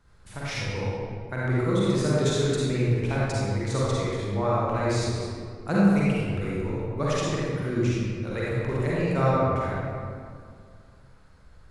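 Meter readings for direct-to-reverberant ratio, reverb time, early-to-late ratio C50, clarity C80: -8.0 dB, 2.1 s, -6.0 dB, -2.5 dB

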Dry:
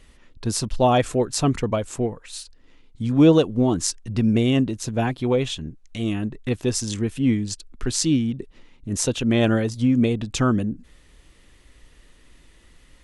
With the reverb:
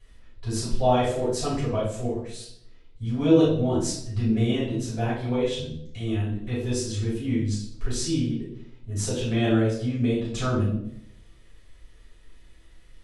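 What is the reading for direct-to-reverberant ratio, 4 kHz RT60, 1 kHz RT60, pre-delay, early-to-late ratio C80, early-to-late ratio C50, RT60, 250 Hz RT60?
-9.5 dB, 0.55 s, 0.65 s, 3 ms, 7.0 dB, 2.5 dB, 0.75 s, 0.85 s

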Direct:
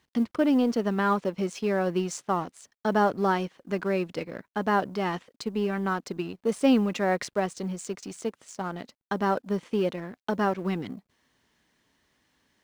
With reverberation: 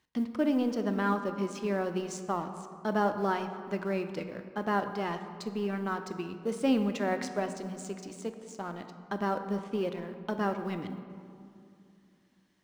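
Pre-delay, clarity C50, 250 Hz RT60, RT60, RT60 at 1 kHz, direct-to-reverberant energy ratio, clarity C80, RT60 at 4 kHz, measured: 3 ms, 9.0 dB, 3.3 s, 2.5 s, 2.4 s, 7.5 dB, 10.0 dB, 1.2 s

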